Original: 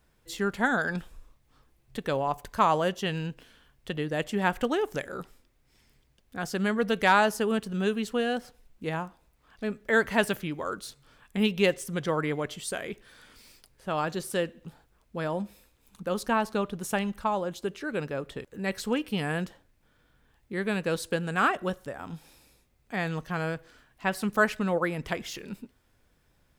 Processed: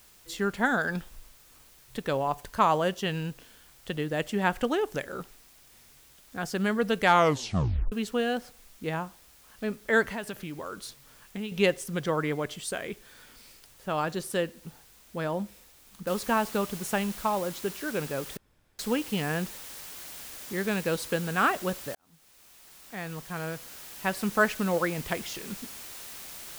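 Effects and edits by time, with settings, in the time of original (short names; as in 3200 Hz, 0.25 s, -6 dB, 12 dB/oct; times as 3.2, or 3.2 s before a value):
7.05 tape stop 0.87 s
10.08–11.52 compressor 3:1, threshold -34 dBFS
16.07 noise floor step -57 dB -43 dB
18.37–18.79 room tone
21.95–24.32 fade in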